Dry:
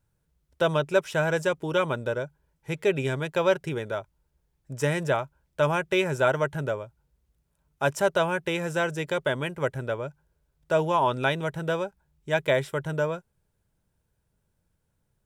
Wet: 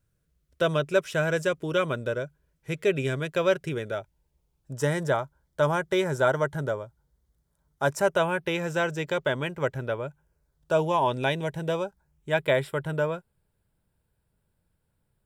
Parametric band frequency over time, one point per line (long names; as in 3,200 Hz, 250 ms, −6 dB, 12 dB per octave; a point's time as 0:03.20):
parametric band −14 dB 0.23 octaves
0:03.81 870 Hz
0:04.91 2,600 Hz
0:07.87 2,600 Hz
0:08.62 10,000 Hz
0:09.71 10,000 Hz
0:10.98 1,300 Hz
0:11.68 1,300 Hz
0:12.33 6,200 Hz